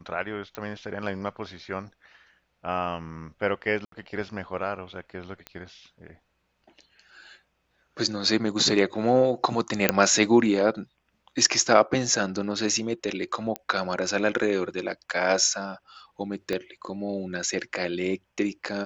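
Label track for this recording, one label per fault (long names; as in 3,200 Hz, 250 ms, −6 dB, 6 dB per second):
0.550000	0.550000	click −18 dBFS
3.850000	3.920000	drop-out 73 ms
5.470000	5.470000	click −21 dBFS
9.890000	9.890000	click −2 dBFS
13.560000	13.560000	click −14 dBFS
16.530000	16.530000	click −16 dBFS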